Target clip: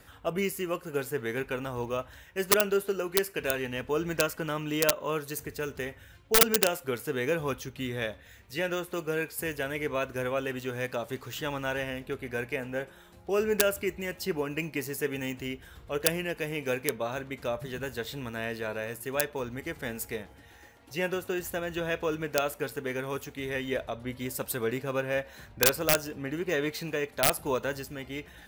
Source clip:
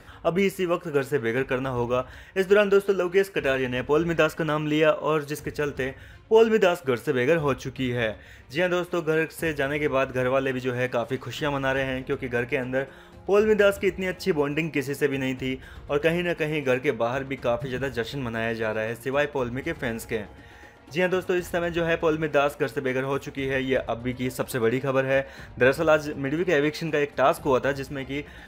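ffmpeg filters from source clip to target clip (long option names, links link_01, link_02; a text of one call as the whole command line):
ffmpeg -i in.wav -af "aeval=exprs='(mod(3.16*val(0)+1,2)-1)/3.16':channel_layout=same,aemphasis=mode=production:type=50kf,volume=-7.5dB" out.wav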